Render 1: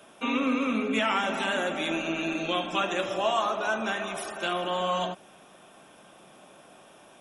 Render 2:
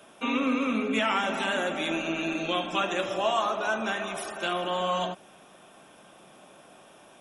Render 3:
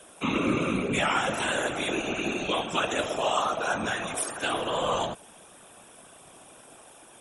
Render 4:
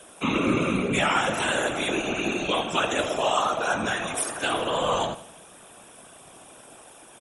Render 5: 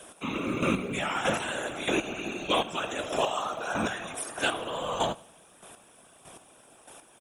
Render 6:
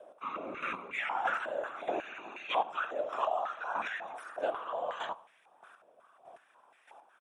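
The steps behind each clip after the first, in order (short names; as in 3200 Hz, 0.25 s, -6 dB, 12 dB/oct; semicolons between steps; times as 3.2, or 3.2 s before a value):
nothing audible
whisperiser; bell 8900 Hz +14 dB 0.64 oct
feedback echo 84 ms, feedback 45%, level -15 dB; gain +2.5 dB
chopper 1.6 Hz, depth 60%, duty 20%; companded quantiser 8-bit
stepped band-pass 5.5 Hz 590–2000 Hz; gain +4 dB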